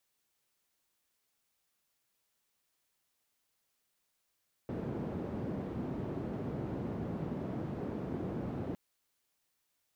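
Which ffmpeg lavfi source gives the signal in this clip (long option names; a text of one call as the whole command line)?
ffmpeg -f lavfi -i "anoisesrc=color=white:duration=4.06:sample_rate=44100:seed=1,highpass=frequency=100,lowpass=frequency=290,volume=-13.1dB" out.wav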